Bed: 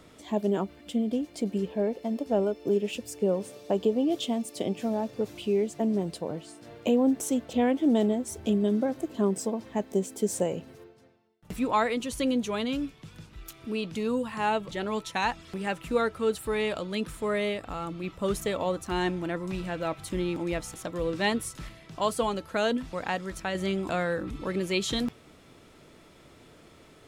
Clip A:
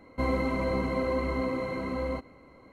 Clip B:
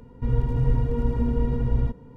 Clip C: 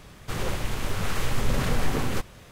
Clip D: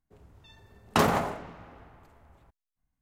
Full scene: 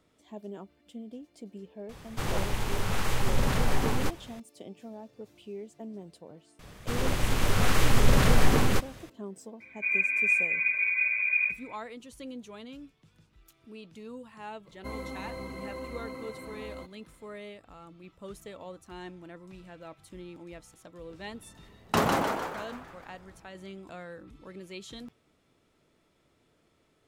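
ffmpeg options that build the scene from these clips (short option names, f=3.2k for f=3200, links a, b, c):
-filter_complex "[3:a]asplit=2[a][b];[0:a]volume=-15dB[c];[a]equalizer=f=870:w=4.6:g=4.5[d];[b]dynaudnorm=f=240:g=5:m=6dB[e];[2:a]lowpass=f=2.1k:t=q:w=0.5098,lowpass=f=2.1k:t=q:w=0.6013,lowpass=f=2.1k:t=q:w=0.9,lowpass=f=2.1k:t=q:w=2.563,afreqshift=-2500[f];[1:a]aemphasis=mode=production:type=75kf[g];[4:a]asplit=8[h][i][j][k][l][m][n][o];[i]adelay=151,afreqshift=110,volume=-4dB[p];[j]adelay=302,afreqshift=220,volume=-9.8dB[q];[k]adelay=453,afreqshift=330,volume=-15.7dB[r];[l]adelay=604,afreqshift=440,volume=-21.5dB[s];[m]adelay=755,afreqshift=550,volume=-27.4dB[t];[n]adelay=906,afreqshift=660,volume=-33.2dB[u];[o]adelay=1057,afreqshift=770,volume=-39.1dB[v];[h][p][q][r][s][t][u][v]amix=inputs=8:normalize=0[w];[d]atrim=end=2.51,asetpts=PTS-STARTPTS,volume=-1.5dB,afade=t=in:d=0.004:c=hsin,afade=t=out:st=2.506:d=0.004:c=hsin,adelay=1890[x];[e]atrim=end=2.51,asetpts=PTS-STARTPTS,volume=-2dB,afade=t=in:d=0.004:c=hsin,afade=t=out:st=2.506:d=0.004:c=hsin,adelay=6590[y];[f]atrim=end=2.16,asetpts=PTS-STARTPTS,volume=-5.5dB,afade=t=in:d=0.004:c=hsin,afade=t=out:st=2.156:d=0.004:c=hsin,adelay=9600[z];[g]atrim=end=2.72,asetpts=PTS-STARTPTS,volume=-11.5dB,afade=t=in:d=0.004:c=hsin,afade=t=out:st=2.716:d=0.004:c=hsin,adelay=14660[aa];[w]atrim=end=3.01,asetpts=PTS-STARTPTS,volume=-2.5dB,afade=t=in:d=0.004:c=hsin,afade=t=out:st=3.006:d=0.004:c=hsin,adelay=20980[ab];[c][x][y][z][aa][ab]amix=inputs=6:normalize=0"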